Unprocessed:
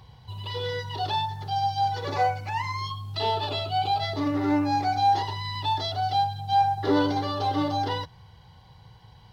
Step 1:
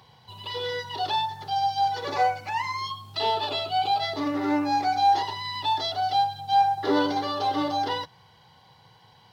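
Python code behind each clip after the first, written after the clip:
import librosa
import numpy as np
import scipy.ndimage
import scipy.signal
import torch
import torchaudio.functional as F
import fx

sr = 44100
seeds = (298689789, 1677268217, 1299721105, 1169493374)

y = scipy.signal.sosfilt(scipy.signal.butter(2, 150.0, 'highpass', fs=sr, output='sos'), x)
y = fx.low_shelf(y, sr, hz=310.0, db=-6.0)
y = F.gain(torch.from_numpy(y), 2.0).numpy()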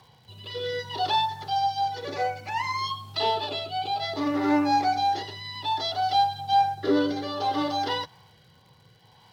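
y = fx.rotary(x, sr, hz=0.6)
y = fx.dmg_crackle(y, sr, seeds[0], per_s=160.0, level_db=-53.0)
y = F.gain(torch.from_numpy(y), 2.5).numpy()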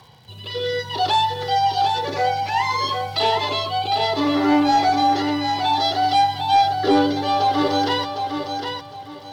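y = fx.fold_sine(x, sr, drive_db=3, ceiling_db=-11.5)
y = fx.echo_feedback(y, sr, ms=757, feedback_pct=28, wet_db=-6.0)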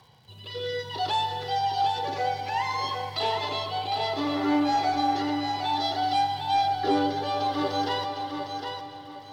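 y = fx.rev_freeverb(x, sr, rt60_s=3.1, hf_ratio=0.6, predelay_ms=55, drr_db=8.5)
y = F.gain(torch.from_numpy(y), -8.0).numpy()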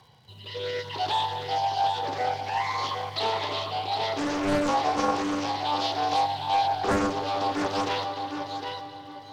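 y = fx.doppler_dist(x, sr, depth_ms=0.83)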